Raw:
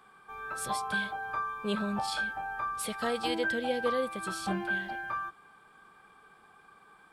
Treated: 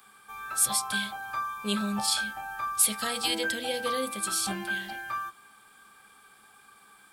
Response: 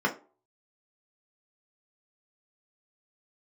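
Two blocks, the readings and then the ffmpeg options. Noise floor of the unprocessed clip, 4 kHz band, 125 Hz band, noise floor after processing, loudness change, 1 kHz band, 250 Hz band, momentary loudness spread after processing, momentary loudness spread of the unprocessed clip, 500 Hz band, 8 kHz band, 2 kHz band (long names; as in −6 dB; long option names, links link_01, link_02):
−59 dBFS, +8.5 dB, +0.5 dB, −57 dBFS, +4.5 dB, +0.5 dB, +1.0 dB, 11 LU, 7 LU, −2.5 dB, +15.5 dB, +0.5 dB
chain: -filter_complex "[0:a]crystalizer=i=6.5:c=0,asplit=2[link_01][link_02];[1:a]atrim=start_sample=2205,lowshelf=frequency=200:gain=11[link_03];[link_02][link_03]afir=irnorm=-1:irlink=0,volume=-21.5dB[link_04];[link_01][link_04]amix=inputs=2:normalize=0,volume=-2.5dB"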